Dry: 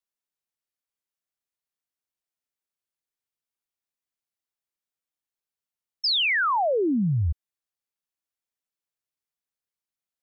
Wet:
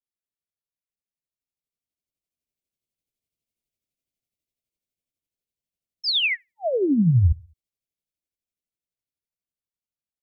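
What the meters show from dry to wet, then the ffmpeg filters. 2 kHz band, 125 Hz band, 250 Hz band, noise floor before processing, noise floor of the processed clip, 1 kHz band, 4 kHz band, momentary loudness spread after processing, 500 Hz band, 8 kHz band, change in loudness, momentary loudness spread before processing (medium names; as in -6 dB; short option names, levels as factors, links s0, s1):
-2.5 dB, +6.5 dB, +4.0 dB, under -85 dBFS, under -85 dBFS, -14.0 dB, +0.5 dB, 9 LU, +0.5 dB, no reading, +1.5 dB, 8 LU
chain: -filter_complex "[0:a]lowshelf=f=350:g=11.5,asplit=2[s0][s1];[s1]adelay=70,lowpass=f=870:p=1,volume=0.0631,asplit=2[s2][s3];[s3]adelay=70,lowpass=f=870:p=1,volume=0.42,asplit=2[s4][s5];[s5]adelay=70,lowpass=f=870:p=1,volume=0.42[s6];[s0][s2][s4][s6]amix=inputs=4:normalize=0,dynaudnorm=f=630:g=7:m=3.76,tremolo=f=12:d=0.45,asuperstop=centerf=1200:order=20:qfactor=0.93,adynamicequalizer=threshold=0.0447:dfrequency=1500:dqfactor=0.7:tfrequency=1500:tqfactor=0.7:attack=5:release=100:ratio=0.375:range=2.5:mode=boostabove:tftype=highshelf,volume=0.376"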